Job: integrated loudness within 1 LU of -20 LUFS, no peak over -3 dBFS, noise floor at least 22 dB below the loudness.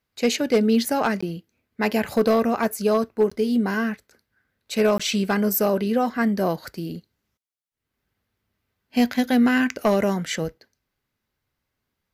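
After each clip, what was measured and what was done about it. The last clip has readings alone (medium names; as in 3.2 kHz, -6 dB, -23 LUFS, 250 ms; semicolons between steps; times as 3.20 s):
clipped samples 0.2%; clipping level -11.5 dBFS; dropouts 3; longest dropout 15 ms; loudness -22.5 LUFS; peak level -11.5 dBFS; loudness target -20.0 LUFS
-> clip repair -11.5 dBFS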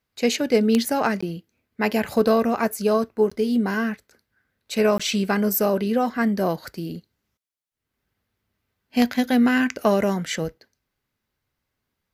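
clipped samples 0.0%; dropouts 3; longest dropout 15 ms
-> interpolate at 1.21/3.30/4.98 s, 15 ms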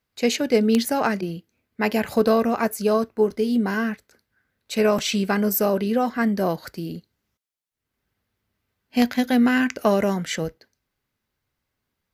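dropouts 0; loudness -22.0 LUFS; peak level -2.5 dBFS; loudness target -20.0 LUFS
-> trim +2 dB; peak limiter -3 dBFS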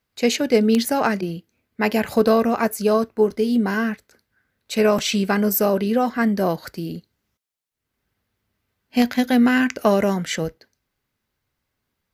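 loudness -20.0 LUFS; peak level -3.0 dBFS; noise floor -79 dBFS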